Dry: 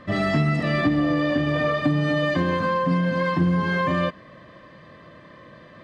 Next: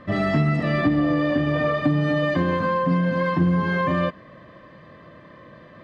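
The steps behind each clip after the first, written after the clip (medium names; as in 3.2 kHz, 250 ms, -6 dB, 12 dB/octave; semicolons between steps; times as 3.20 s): treble shelf 3.3 kHz -8 dB; trim +1 dB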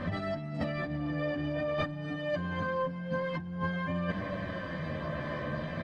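comb 1.3 ms, depth 36%; compressor with a negative ratio -32 dBFS, ratio -1; chorus voices 2, 0.47 Hz, delay 12 ms, depth 1.8 ms; trim +1.5 dB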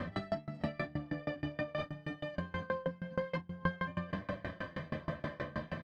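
doubling 36 ms -9.5 dB; sawtooth tremolo in dB decaying 6.3 Hz, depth 27 dB; trim +2.5 dB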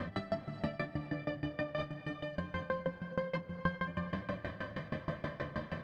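reverberation, pre-delay 3 ms, DRR 10.5 dB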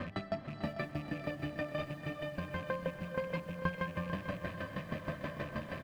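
rattle on loud lows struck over -42 dBFS, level -40 dBFS; feedback delay 445 ms, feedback 50%, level -11 dB; bit-crushed delay 629 ms, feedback 55%, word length 9-bit, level -11 dB; trim -1 dB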